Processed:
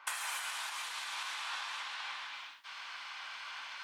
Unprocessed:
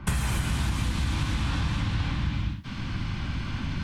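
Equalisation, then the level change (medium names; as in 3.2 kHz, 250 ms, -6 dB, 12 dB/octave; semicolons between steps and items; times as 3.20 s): high-pass 810 Hz 24 dB/octave; -3.5 dB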